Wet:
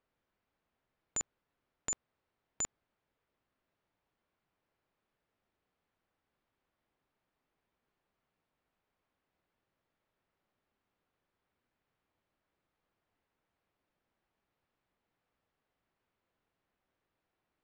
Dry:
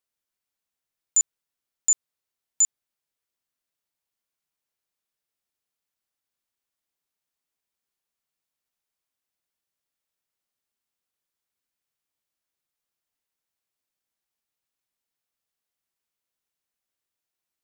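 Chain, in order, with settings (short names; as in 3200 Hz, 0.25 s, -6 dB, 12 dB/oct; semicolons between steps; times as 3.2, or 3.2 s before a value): tape spacing loss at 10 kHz 44 dB; gain +14.5 dB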